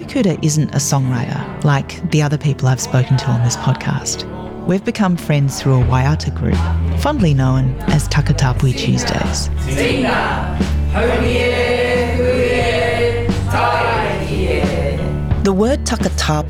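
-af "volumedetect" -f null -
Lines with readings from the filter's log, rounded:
mean_volume: -15.4 dB
max_volume: -4.5 dB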